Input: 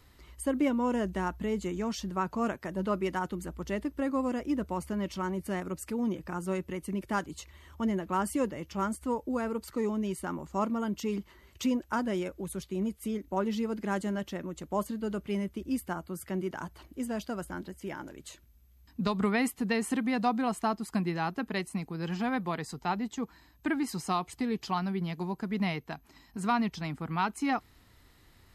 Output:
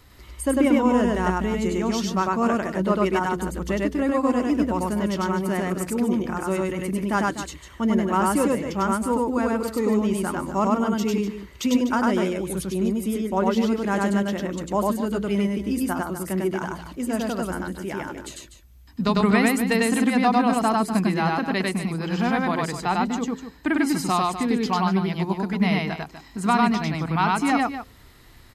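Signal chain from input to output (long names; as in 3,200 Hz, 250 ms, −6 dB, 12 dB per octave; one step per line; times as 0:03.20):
hum removal 86.47 Hz, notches 6
on a send: loudspeakers that aren't time-aligned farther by 34 metres −1 dB, 85 metres −11 dB
on the sum: level +7 dB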